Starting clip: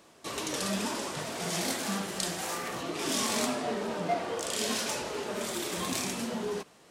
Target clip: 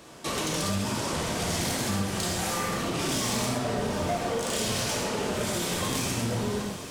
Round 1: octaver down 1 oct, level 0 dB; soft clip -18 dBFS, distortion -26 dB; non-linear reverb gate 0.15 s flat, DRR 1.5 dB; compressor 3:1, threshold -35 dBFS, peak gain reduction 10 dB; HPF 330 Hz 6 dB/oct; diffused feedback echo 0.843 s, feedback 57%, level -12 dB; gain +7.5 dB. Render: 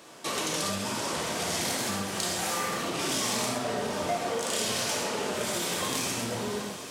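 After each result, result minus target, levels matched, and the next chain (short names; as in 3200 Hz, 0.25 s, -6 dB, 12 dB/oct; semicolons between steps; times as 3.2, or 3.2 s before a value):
soft clip: distortion -11 dB; 250 Hz band -3.5 dB
octaver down 1 oct, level 0 dB; soft clip -26 dBFS, distortion -15 dB; non-linear reverb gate 0.15 s flat, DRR 1.5 dB; compressor 3:1, threshold -35 dBFS, peak gain reduction 8.5 dB; HPF 330 Hz 6 dB/oct; diffused feedback echo 0.843 s, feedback 57%, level -12 dB; gain +7.5 dB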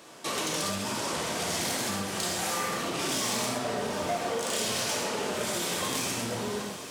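250 Hz band -3.5 dB
octaver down 1 oct, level 0 dB; soft clip -26 dBFS, distortion -15 dB; non-linear reverb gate 0.15 s flat, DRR 1.5 dB; compressor 3:1, threshold -35 dBFS, peak gain reduction 8.5 dB; diffused feedback echo 0.843 s, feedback 57%, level -12 dB; gain +7.5 dB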